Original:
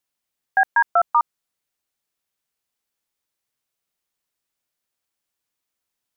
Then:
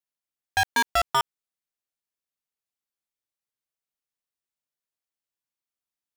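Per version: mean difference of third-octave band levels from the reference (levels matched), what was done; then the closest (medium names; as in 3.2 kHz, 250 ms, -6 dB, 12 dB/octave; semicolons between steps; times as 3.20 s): 18.5 dB: waveshaping leveller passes 5; peak limiter -18.5 dBFS, peak gain reduction 10 dB; waveshaping leveller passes 1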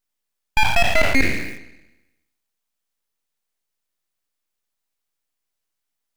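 26.0 dB: spectral sustain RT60 1.03 s; full-wave rectifier; in parallel at -10 dB: bit crusher 5-bit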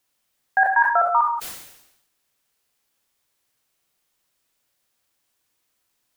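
3.0 dB: in parallel at -1.5 dB: compressor with a negative ratio -26 dBFS, ratio -1; on the sum: gated-style reverb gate 200 ms flat, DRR 4.5 dB; decay stretcher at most 65 dB/s; trim -4 dB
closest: third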